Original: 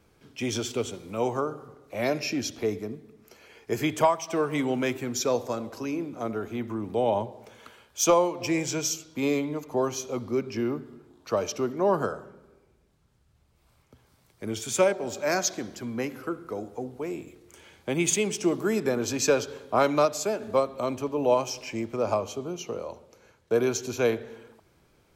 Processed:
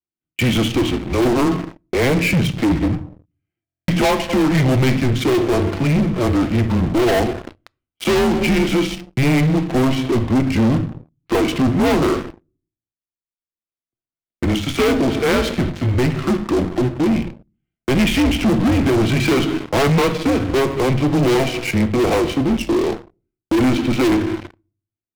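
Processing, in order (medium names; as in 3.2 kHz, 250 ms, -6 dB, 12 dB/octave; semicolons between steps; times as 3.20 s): mistuned SSB -130 Hz 200–3300 Hz; small resonant body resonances 360/670 Hz, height 11 dB, ringing for 70 ms; gate -45 dBFS, range -10 dB; waveshaping leveller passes 5; peaking EQ 780 Hz -8.5 dB 2.7 oct; reverberation RT60 0.45 s, pre-delay 4 ms, DRR 11 dB; waveshaping leveller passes 3; buffer glitch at 3.65 s, samples 1024, times 9; trim -8 dB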